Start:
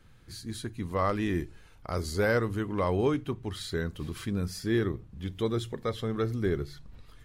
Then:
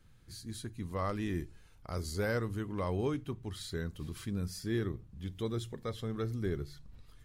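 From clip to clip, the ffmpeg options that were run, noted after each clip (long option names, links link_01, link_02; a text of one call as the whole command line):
ffmpeg -i in.wav -af "bass=frequency=250:gain=4,treble=frequency=4000:gain=5,volume=-8dB" out.wav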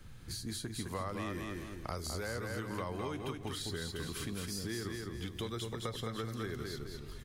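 ffmpeg -i in.wav -filter_complex "[0:a]acompressor=threshold=-36dB:ratio=6,asplit=2[link_01][link_02];[link_02]aecho=0:1:209|418|627|836:0.531|0.186|0.065|0.0228[link_03];[link_01][link_03]amix=inputs=2:normalize=0,acrossover=split=320|760[link_04][link_05][link_06];[link_04]acompressor=threshold=-53dB:ratio=4[link_07];[link_05]acompressor=threshold=-55dB:ratio=4[link_08];[link_06]acompressor=threshold=-51dB:ratio=4[link_09];[link_07][link_08][link_09]amix=inputs=3:normalize=0,volume=10dB" out.wav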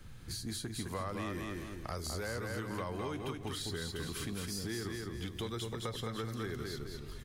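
ffmpeg -i in.wav -af "asoftclip=type=tanh:threshold=-28dB,volume=1dB" out.wav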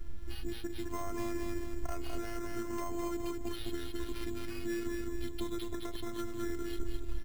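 ffmpeg -i in.wav -af "aemphasis=mode=reproduction:type=bsi,afftfilt=real='hypot(re,im)*cos(PI*b)':imag='0':win_size=512:overlap=0.75,acrusher=samples=6:mix=1:aa=0.000001,volume=2.5dB" out.wav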